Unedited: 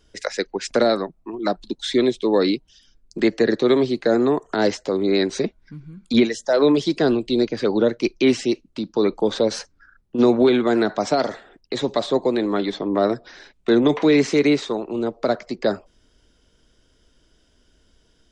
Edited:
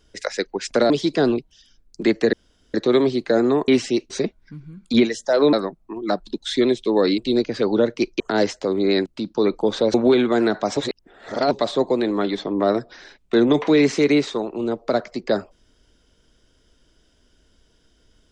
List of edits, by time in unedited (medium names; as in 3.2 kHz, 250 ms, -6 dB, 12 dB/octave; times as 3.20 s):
0.90–2.55 s: swap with 6.73–7.21 s
3.50 s: insert room tone 0.41 s
4.44–5.30 s: swap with 8.23–8.65 s
9.53–10.29 s: delete
11.12–11.86 s: reverse